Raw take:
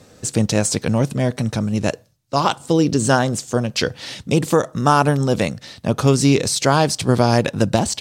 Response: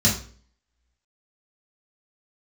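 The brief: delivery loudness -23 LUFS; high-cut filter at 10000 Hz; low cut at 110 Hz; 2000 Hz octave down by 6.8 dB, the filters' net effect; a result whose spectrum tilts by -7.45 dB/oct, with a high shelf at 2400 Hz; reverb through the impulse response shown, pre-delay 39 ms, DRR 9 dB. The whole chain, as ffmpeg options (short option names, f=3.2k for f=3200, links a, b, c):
-filter_complex "[0:a]highpass=110,lowpass=10k,equalizer=f=2k:t=o:g=-6.5,highshelf=f=2.4k:g=-7,asplit=2[a][b];[1:a]atrim=start_sample=2205,adelay=39[c];[b][c]afir=irnorm=-1:irlink=0,volume=-23.5dB[d];[a][d]amix=inputs=2:normalize=0,volume=-5.5dB"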